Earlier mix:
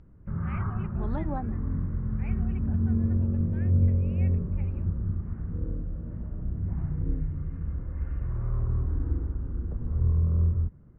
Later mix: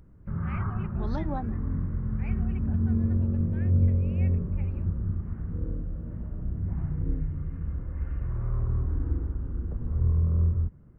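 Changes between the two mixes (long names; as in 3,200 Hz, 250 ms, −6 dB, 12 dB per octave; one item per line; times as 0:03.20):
second voice: remove low-pass filter 3,100 Hz 24 dB per octave
master: remove high-frequency loss of the air 130 metres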